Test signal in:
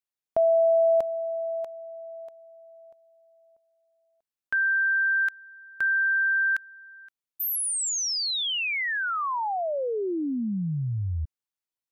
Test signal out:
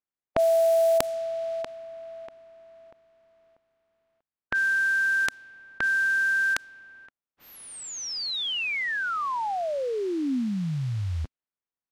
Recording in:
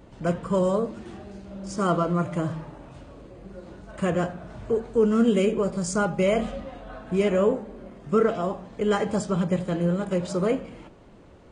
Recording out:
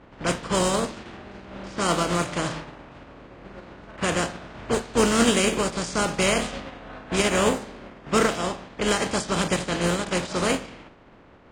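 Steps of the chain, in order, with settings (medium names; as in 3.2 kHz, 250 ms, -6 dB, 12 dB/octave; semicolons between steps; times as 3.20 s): spectral contrast reduction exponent 0.47; level-controlled noise filter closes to 1.8 kHz, open at -18.5 dBFS; peaking EQ 260 Hz +3 dB 0.35 oct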